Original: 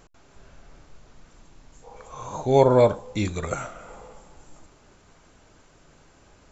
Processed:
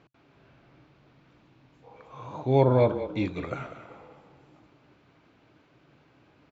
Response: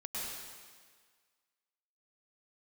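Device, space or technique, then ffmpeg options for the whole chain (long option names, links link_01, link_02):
frequency-shifting delay pedal into a guitar cabinet: -filter_complex "[0:a]asplit=5[link_01][link_02][link_03][link_04][link_05];[link_02]adelay=194,afreqshift=-32,volume=-12dB[link_06];[link_03]adelay=388,afreqshift=-64,volume=-20.9dB[link_07];[link_04]adelay=582,afreqshift=-96,volume=-29.7dB[link_08];[link_05]adelay=776,afreqshift=-128,volume=-38.6dB[link_09];[link_01][link_06][link_07][link_08][link_09]amix=inputs=5:normalize=0,highpass=99,equalizer=frequency=130:width_type=q:width=4:gain=9,equalizer=frequency=300:width_type=q:width=4:gain=8,equalizer=frequency=2400:width_type=q:width=4:gain=4,lowpass=frequency=4200:width=0.5412,lowpass=frequency=4200:width=1.3066,volume=-6dB"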